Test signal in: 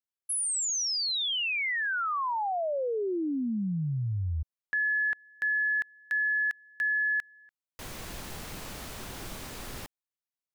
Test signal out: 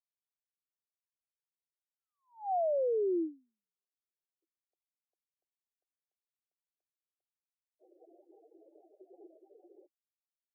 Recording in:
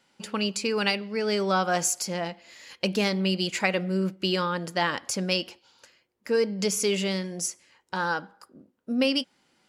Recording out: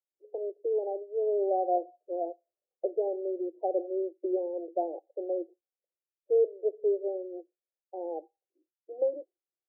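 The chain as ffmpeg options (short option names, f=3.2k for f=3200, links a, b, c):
-af "afftdn=nr=33:nf=-35,asuperpass=centerf=500:order=20:qfactor=1.1"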